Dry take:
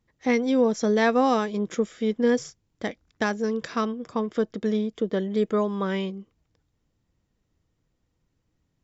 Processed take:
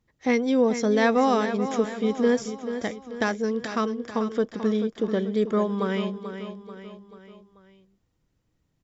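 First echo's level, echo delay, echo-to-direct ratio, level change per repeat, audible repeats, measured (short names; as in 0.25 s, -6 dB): -10.0 dB, 0.437 s, -9.0 dB, -6.0 dB, 4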